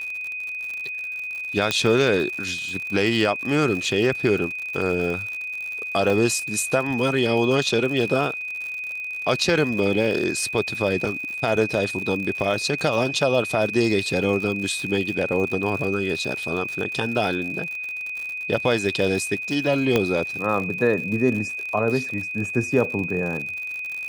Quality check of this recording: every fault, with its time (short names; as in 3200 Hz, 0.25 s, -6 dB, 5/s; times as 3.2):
crackle 82/s -29 dBFS
tone 2500 Hz -28 dBFS
1.71 pop -6 dBFS
6.1 gap 2.8 ms
19.96 pop -6 dBFS